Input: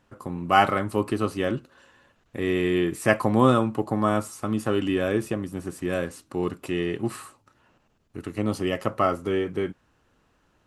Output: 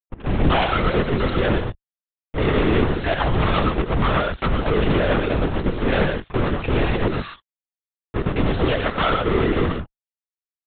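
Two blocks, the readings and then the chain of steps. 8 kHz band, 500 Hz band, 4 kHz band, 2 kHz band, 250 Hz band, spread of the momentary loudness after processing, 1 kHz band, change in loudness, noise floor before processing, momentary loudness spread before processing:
under -35 dB, +3.5 dB, +7.5 dB, +5.5 dB, +2.5 dB, 6 LU, +2.5 dB, +4.0 dB, -66 dBFS, 13 LU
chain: expander on every frequency bin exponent 1.5; band-stop 590 Hz, Q 13; reverb removal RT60 0.53 s; high-pass 60 Hz 12 dB/octave; compression 5:1, threshold -35 dBFS, peak gain reduction 18.5 dB; level-controlled noise filter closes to 340 Hz, open at -36 dBFS; waveshaping leveller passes 2; fuzz box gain 48 dB, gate -52 dBFS; gated-style reverb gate 150 ms rising, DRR 3 dB; LPC vocoder at 8 kHz whisper; trim -5 dB

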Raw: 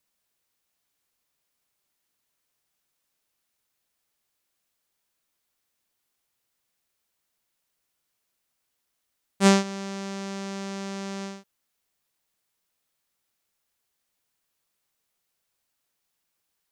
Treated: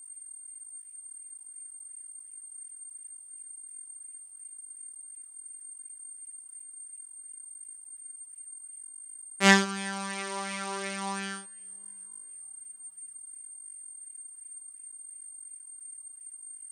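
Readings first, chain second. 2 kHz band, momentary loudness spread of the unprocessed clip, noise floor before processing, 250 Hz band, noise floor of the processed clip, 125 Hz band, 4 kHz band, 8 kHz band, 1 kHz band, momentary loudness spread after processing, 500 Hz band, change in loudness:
+8.0 dB, 16 LU, -79 dBFS, -4.5 dB, -50 dBFS, no reading, +2.5 dB, +7.0 dB, +1.5 dB, 9 LU, -4.5 dB, -8.0 dB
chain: peaking EQ 110 Hz -11.5 dB 2.1 oct; whistle 8.7 kHz -43 dBFS; chorus voices 4, 0.32 Hz, delay 29 ms, depth 2.9 ms; two-slope reverb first 0.55 s, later 4.5 s, from -18 dB, DRR 19 dB; sweeping bell 2.8 Hz 840–2400 Hz +10 dB; trim +3 dB

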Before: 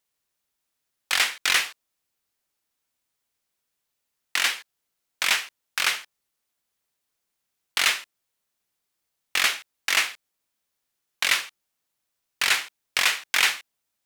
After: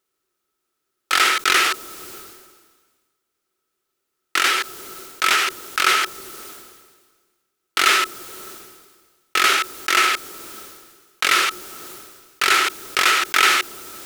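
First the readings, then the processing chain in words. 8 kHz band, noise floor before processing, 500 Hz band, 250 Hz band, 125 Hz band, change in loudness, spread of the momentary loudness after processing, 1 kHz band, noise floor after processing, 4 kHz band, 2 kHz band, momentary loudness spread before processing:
+4.5 dB, -80 dBFS, +12.0 dB, +15.5 dB, no reading, +5.5 dB, 20 LU, +13.5 dB, -77 dBFS, +4.5 dB, +5.5 dB, 10 LU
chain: small resonant body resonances 370/1300 Hz, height 17 dB, ringing for 40 ms; decay stretcher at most 38 dB/s; trim +1.5 dB

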